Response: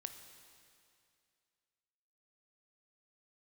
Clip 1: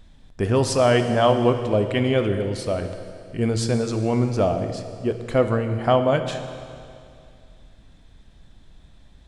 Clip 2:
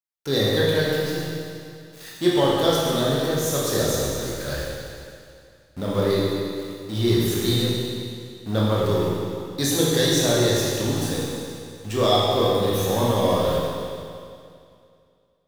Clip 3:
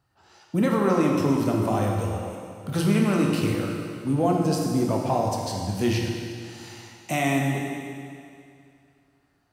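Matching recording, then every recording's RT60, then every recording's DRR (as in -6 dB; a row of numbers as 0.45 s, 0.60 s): 1; 2.4 s, 2.4 s, 2.4 s; 7.0 dB, -6.0 dB, -0.5 dB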